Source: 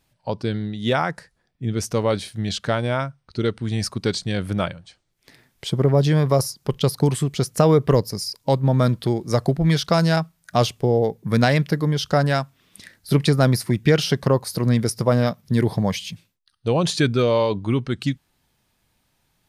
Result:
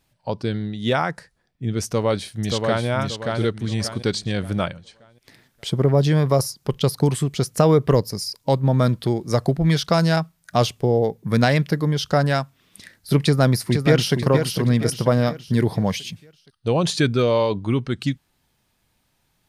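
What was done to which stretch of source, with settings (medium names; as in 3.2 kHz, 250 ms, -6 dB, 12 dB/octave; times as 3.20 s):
1.85–2.86 s: echo throw 580 ms, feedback 35%, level -3.5 dB
13.21–14.15 s: echo throw 470 ms, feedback 45%, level -6.5 dB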